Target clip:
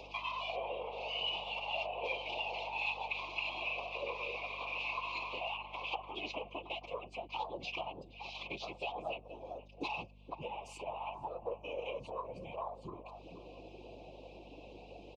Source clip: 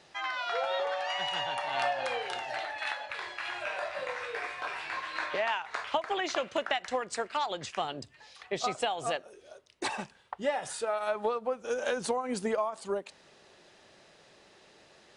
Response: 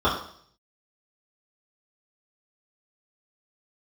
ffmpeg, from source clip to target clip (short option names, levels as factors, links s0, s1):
-filter_complex "[0:a]asplit=2[s0][s1];[s1]alimiter=level_in=1.12:limit=0.0631:level=0:latency=1,volume=0.891,volume=1.06[s2];[s0][s2]amix=inputs=2:normalize=0,acompressor=threshold=0.0126:ratio=10,equalizer=f=2600:t=o:w=0.31:g=9,afwtdn=0.00447,lowshelf=f=450:g=-10,asplit=2[s3][s4];[s4]adelay=474,lowpass=f=830:p=1,volume=0.299,asplit=2[s5][s6];[s6]adelay=474,lowpass=f=830:p=1,volume=0.27,asplit=2[s7][s8];[s8]adelay=474,lowpass=f=830:p=1,volume=0.27[s9];[s5][s7][s9]amix=inputs=3:normalize=0[s10];[s3][s10]amix=inputs=2:normalize=0,afftfilt=real='hypot(re,im)*cos(PI*b)':imag='0':win_size=1024:overlap=0.75,asuperstop=centerf=1600:order=12:qfactor=1.3,acompressor=mode=upward:threshold=0.00282:ratio=2.5,highpass=110,lowpass=3400,afftfilt=real='hypot(re,im)*cos(2*PI*random(0))':imag='hypot(re,im)*sin(2*PI*random(1))':win_size=512:overlap=0.75,aeval=exprs='val(0)+0.000282*(sin(2*PI*50*n/s)+sin(2*PI*2*50*n/s)/2+sin(2*PI*3*50*n/s)/3+sin(2*PI*4*50*n/s)/4+sin(2*PI*5*50*n/s)/5)':c=same,volume=4.73"